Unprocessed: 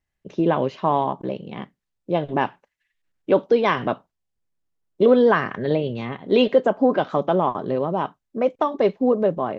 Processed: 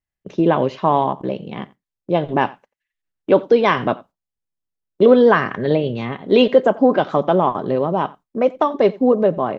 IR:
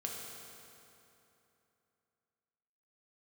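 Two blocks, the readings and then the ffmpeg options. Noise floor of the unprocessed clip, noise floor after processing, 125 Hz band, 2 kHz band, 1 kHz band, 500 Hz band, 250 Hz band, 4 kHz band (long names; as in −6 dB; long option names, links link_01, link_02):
−80 dBFS, below −85 dBFS, +4.0 dB, +4.0 dB, +4.0 dB, +4.0 dB, +4.0 dB, +4.0 dB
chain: -filter_complex "[0:a]agate=range=-12dB:threshold=-45dB:ratio=16:detection=peak,asplit=2[link_01][link_02];[link_02]adelay=87.46,volume=-22dB,highshelf=frequency=4000:gain=-1.97[link_03];[link_01][link_03]amix=inputs=2:normalize=0,volume=4dB"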